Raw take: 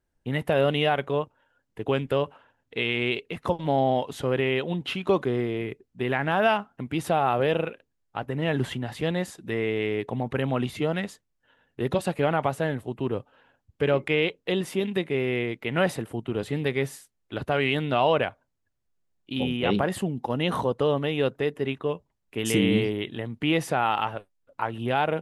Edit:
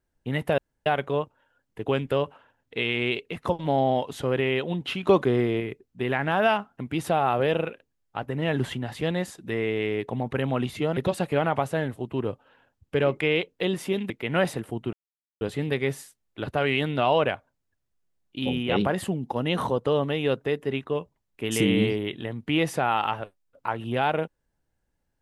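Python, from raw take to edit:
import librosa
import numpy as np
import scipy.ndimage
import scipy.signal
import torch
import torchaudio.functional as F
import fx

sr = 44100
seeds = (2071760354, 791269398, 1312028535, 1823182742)

y = fx.edit(x, sr, fx.room_tone_fill(start_s=0.58, length_s=0.28),
    fx.clip_gain(start_s=5.03, length_s=0.57, db=3.5),
    fx.cut(start_s=10.97, length_s=0.87),
    fx.cut(start_s=14.97, length_s=0.55),
    fx.insert_silence(at_s=16.35, length_s=0.48), tone=tone)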